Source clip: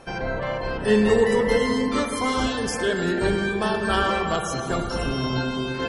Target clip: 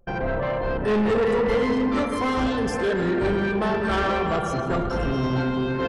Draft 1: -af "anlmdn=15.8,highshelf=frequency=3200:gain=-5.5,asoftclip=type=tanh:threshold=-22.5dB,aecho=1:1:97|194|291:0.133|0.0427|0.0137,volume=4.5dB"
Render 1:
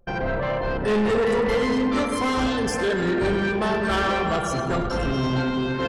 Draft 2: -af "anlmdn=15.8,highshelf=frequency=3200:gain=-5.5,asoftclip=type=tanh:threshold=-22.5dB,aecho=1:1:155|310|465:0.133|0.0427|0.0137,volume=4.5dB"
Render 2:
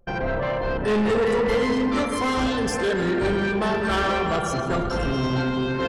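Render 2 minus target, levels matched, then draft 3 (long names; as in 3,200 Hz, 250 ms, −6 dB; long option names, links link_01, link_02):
8,000 Hz band +6.5 dB
-af "anlmdn=15.8,highshelf=frequency=3200:gain=-14,asoftclip=type=tanh:threshold=-22.5dB,aecho=1:1:155|310|465:0.133|0.0427|0.0137,volume=4.5dB"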